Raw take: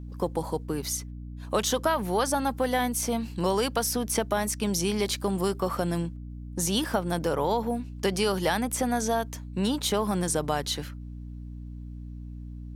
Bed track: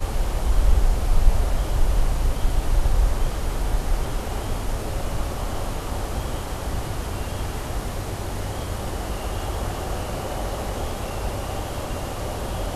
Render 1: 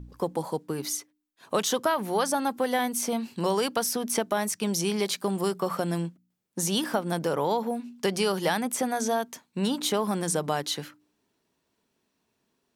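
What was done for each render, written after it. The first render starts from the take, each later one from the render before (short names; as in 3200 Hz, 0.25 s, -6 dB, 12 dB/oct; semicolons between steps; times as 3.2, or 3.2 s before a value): de-hum 60 Hz, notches 5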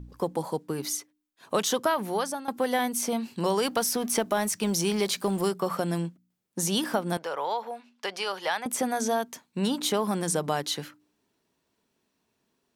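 1.88–2.48 fade out equal-power, to -15.5 dB; 3.65–5.49 G.711 law mismatch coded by mu; 7.17–8.66 three-band isolator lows -22 dB, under 530 Hz, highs -13 dB, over 5200 Hz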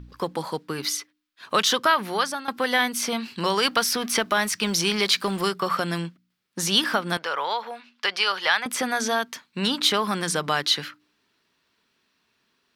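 band shelf 2400 Hz +10.5 dB 2.5 oct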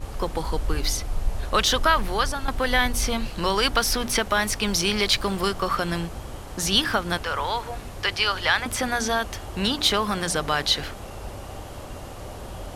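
add bed track -8.5 dB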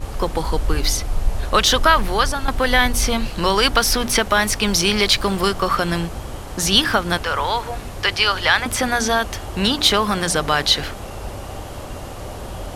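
gain +5.5 dB; limiter -1 dBFS, peak gain reduction 2 dB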